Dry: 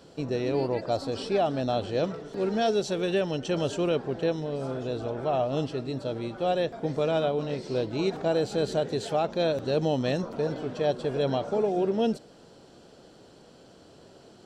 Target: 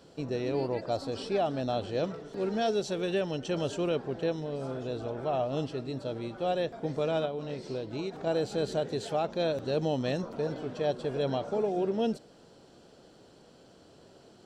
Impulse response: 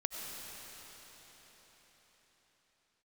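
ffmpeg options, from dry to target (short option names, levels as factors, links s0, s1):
-filter_complex "[0:a]asettb=1/sr,asplit=3[s0][s1][s2];[s0]atrim=end=7.254[s3];[s1]atrim=start=7.25:end=8.27,asetpts=PTS-STARTPTS,afade=t=in:d=0.004:c=qsin,afade=t=out:st=1.016:d=0.004:c=qsin,acompressor=threshold=0.0398:ratio=6[s4];[s2]atrim=start=8.266[s5];[s3][s4]acrossfade=d=0.004:c1=hsin:c2=qsin[s6];[s6][s5]acrossfade=d=0.004:c1=qsin:c2=hsin,volume=0.668"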